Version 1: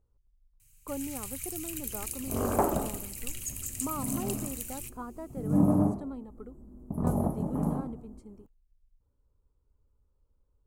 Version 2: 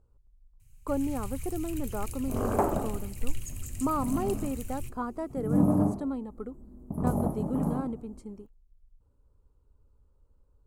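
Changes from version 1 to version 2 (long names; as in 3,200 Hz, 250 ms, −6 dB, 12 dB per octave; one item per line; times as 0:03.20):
speech +7.0 dB
first sound: add spectral tilt −2.5 dB per octave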